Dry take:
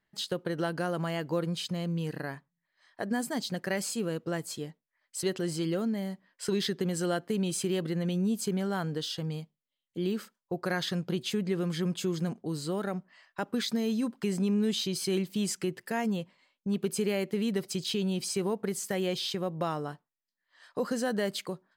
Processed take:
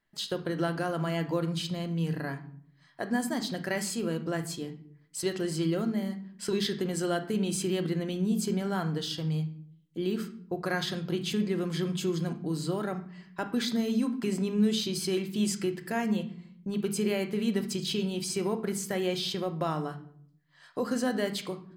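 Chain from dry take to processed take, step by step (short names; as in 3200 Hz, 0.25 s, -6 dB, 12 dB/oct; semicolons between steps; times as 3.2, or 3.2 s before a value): on a send: bell 550 Hz -12.5 dB 0.39 oct + reverb RT60 0.65 s, pre-delay 3 ms, DRR 6.5 dB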